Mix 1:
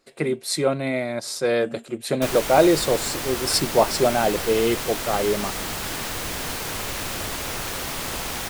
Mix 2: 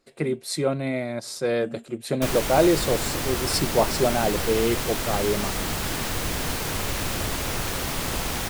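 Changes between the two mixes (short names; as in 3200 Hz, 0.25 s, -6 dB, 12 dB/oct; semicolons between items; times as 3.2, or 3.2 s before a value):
speech -4.5 dB; master: add low shelf 290 Hz +6.5 dB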